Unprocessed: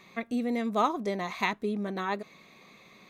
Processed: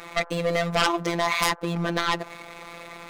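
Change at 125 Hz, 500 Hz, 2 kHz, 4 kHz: +11.0 dB, +6.0 dB, +9.0 dB, +14.0 dB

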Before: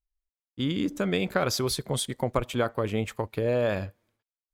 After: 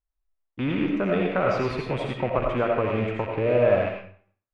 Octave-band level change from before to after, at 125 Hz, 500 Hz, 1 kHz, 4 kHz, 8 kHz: +2.0 dB, +5.5 dB, +5.0 dB, -7.5 dB, under -20 dB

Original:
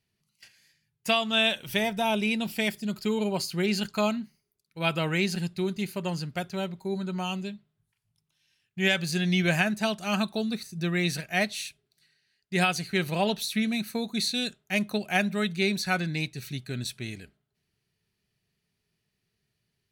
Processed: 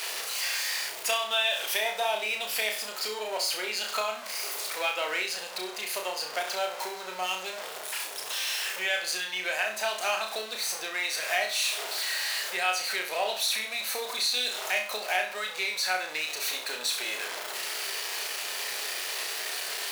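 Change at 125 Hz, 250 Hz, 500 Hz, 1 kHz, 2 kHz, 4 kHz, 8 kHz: under -30 dB, -22.5 dB, -3.0 dB, +1.0 dB, +1.0 dB, +3.0 dB, +8.0 dB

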